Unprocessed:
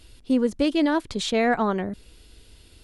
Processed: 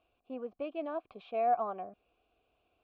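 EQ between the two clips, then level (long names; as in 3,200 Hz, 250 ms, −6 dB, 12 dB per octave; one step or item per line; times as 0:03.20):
formant filter a
high-frequency loss of the air 410 metres
low-shelf EQ 64 Hz +8.5 dB
0.0 dB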